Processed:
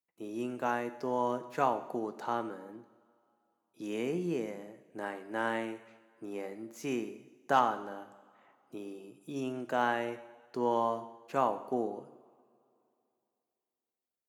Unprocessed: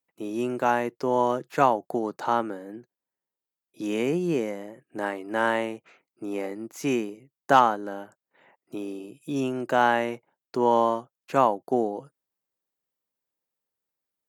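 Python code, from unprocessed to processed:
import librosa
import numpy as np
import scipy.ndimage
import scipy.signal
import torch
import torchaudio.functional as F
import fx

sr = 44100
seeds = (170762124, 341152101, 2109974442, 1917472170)

y = fx.rev_double_slope(x, sr, seeds[0], early_s=0.85, late_s=2.8, knee_db=-18, drr_db=9.5)
y = y * 10.0 ** (-9.0 / 20.0)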